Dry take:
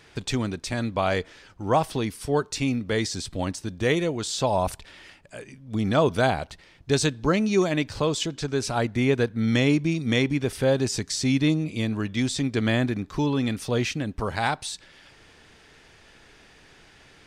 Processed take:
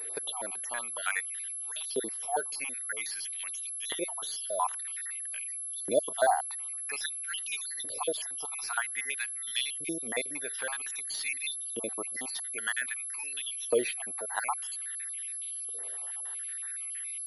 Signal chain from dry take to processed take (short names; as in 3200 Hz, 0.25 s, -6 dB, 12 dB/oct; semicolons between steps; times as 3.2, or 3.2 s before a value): random spectral dropouts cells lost 52%; LFO high-pass saw up 0.51 Hz 430–4300 Hz; in parallel at -0.5 dB: compressor, threshold -44 dBFS, peak gain reduction 26 dB; on the sum: pulse-width modulation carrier 11000 Hz; gain -5.5 dB